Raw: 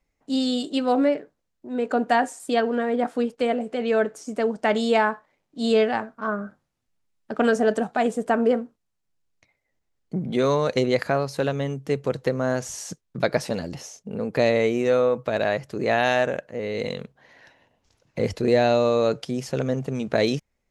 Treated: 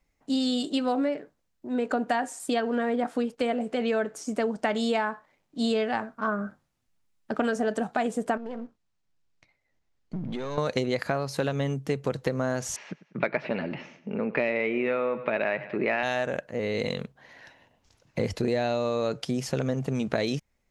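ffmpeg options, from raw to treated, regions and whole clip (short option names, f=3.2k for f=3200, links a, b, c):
-filter_complex "[0:a]asettb=1/sr,asplit=3[a][b][c];[a]atrim=end=8.374[d];[b]atrim=start=8.37:end=10.58,asetpts=PTS-STARTPTS,afade=t=in:d=0.004:c=qsin,afade=t=out:st=2.206:d=0.004:c=qsin,aeval=exprs='if(lt(val(0),0),0.447*val(0),val(0))':c=same,lowpass=6.6k,acompressor=threshold=-30dB:ratio=10:attack=3.2:release=140:knee=1:detection=peak[e];[c]atrim=start=10.576[f];[d][e]acrossfade=d=0.004:c1=hsin:c2=qsin[g];[g][f]acrossfade=d=0.004:c1=qsin:c2=hsin,asettb=1/sr,asplit=3[h][i][j];[h]atrim=end=12.764[k];[i]atrim=start=12.76:end=16.03,asetpts=PTS-STARTPTS,afade=t=in:d=0.004:c=qsin,afade=t=out:st=3.266:d=0.004:c=qsin,highpass=280,equalizer=f=290:t=q:w=4:g=-5,equalizer=f=490:t=q:w=4:g=-7,equalizer=f=730:t=q:w=4:g=-7,equalizer=f=1.1k:t=q:w=4:g=-4,equalizer=f=1.6k:t=q:w=4:g=-4,equalizer=f=2.4k:t=q:w=4:g=5,lowpass=f=2.5k:w=0.5412,lowpass=f=2.5k:w=1.3066,acontrast=53,aecho=1:1:98|196|294|392:0.133|0.0667|0.0333|0.0167,atrim=end_sample=144207[l];[j]atrim=start=16.026[m];[k][l]acrossfade=d=0.004:c1=hsin:c2=qsin[n];[n][m]acrossfade=d=0.004:c1=qsin:c2=hsin,equalizer=f=450:w=1.5:g=-2.5,acompressor=threshold=-25dB:ratio=6,volume=2dB"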